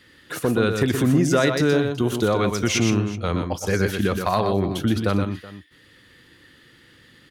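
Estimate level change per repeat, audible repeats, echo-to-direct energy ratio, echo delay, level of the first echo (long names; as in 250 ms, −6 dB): repeats not evenly spaced, 3, −5.5 dB, 122 ms, −6.0 dB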